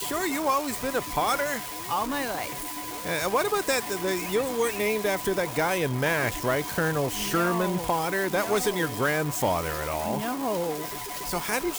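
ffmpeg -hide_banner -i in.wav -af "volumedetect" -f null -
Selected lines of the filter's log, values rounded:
mean_volume: -27.1 dB
max_volume: -12.3 dB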